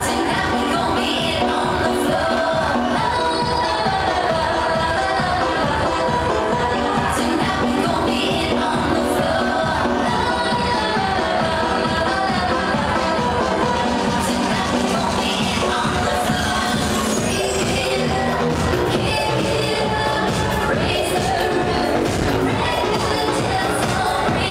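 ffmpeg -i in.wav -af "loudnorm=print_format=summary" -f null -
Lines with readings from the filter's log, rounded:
Input Integrated:    -18.9 LUFS
Input True Peak:      -7.0 dBTP
Input LRA:             0.3 LU
Input Threshold:     -28.9 LUFS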